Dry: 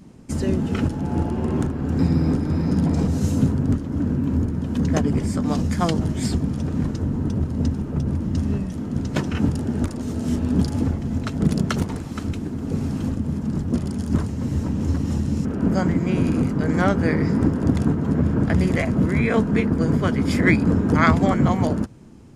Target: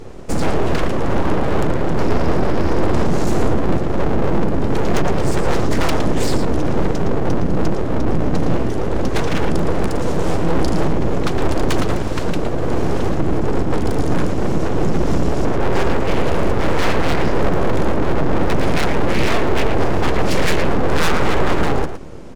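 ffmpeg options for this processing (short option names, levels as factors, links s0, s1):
-filter_complex "[0:a]highshelf=f=7800:g=-11,asplit=2[s0][s1];[s1]alimiter=limit=0.188:level=0:latency=1,volume=1.33[s2];[s0][s2]amix=inputs=2:normalize=0,asoftclip=type=tanh:threshold=0.188,aecho=1:1:113:0.355,aeval=exprs='abs(val(0))':c=same,volume=1.88"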